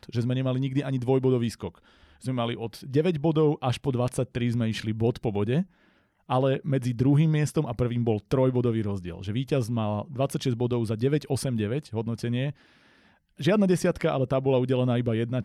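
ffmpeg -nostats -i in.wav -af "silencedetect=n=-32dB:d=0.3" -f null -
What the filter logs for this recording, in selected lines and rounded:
silence_start: 1.69
silence_end: 2.24 | silence_duration: 0.56
silence_start: 5.63
silence_end: 6.30 | silence_duration: 0.67
silence_start: 12.51
silence_end: 13.40 | silence_duration: 0.89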